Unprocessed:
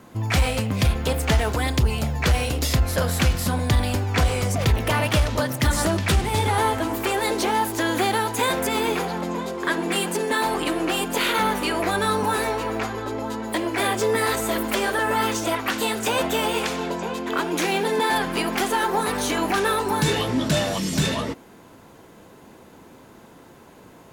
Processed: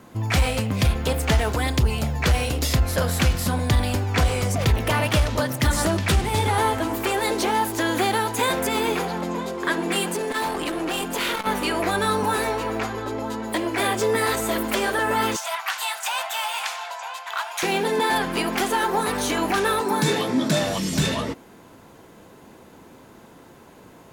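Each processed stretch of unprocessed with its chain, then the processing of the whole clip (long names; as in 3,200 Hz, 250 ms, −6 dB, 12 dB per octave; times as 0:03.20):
0:10.14–0:11.47: hard clipping −20 dBFS + saturating transformer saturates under 290 Hz
0:15.36–0:17.63: Butterworth high-pass 690 Hz 48 dB per octave + saturating transformer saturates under 2,300 Hz
0:19.81–0:20.63: high-pass filter 160 Hz 24 dB per octave + low-shelf EQ 220 Hz +4.5 dB + notch filter 2,900 Hz, Q 9.5
whole clip: no processing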